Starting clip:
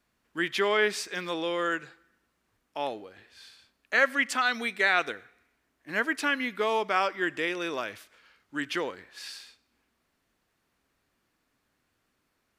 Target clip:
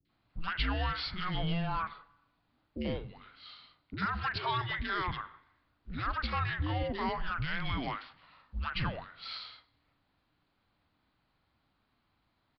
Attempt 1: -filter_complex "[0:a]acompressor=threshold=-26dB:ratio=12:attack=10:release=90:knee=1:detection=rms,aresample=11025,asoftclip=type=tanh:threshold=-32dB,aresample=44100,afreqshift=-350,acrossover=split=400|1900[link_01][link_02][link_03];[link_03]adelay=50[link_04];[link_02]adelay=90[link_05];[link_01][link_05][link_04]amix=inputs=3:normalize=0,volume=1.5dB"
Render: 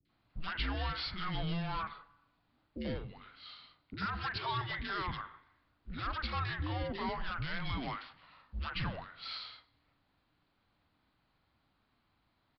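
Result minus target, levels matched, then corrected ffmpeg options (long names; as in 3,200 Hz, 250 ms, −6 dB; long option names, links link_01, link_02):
soft clipping: distortion +8 dB
-filter_complex "[0:a]acompressor=threshold=-26dB:ratio=12:attack=10:release=90:knee=1:detection=rms,aresample=11025,asoftclip=type=tanh:threshold=-24dB,aresample=44100,afreqshift=-350,acrossover=split=400|1900[link_01][link_02][link_03];[link_03]adelay=50[link_04];[link_02]adelay=90[link_05];[link_01][link_05][link_04]amix=inputs=3:normalize=0,volume=1.5dB"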